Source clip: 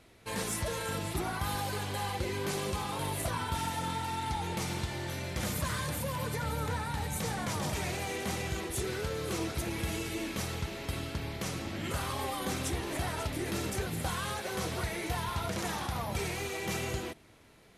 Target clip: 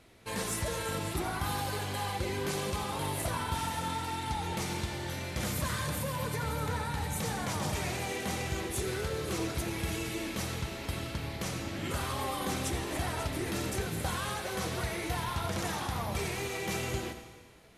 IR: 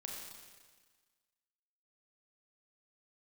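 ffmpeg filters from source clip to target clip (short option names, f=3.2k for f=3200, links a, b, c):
-filter_complex "[0:a]asplit=2[a][b];[1:a]atrim=start_sample=2205,adelay=88[c];[b][c]afir=irnorm=-1:irlink=0,volume=-7dB[d];[a][d]amix=inputs=2:normalize=0"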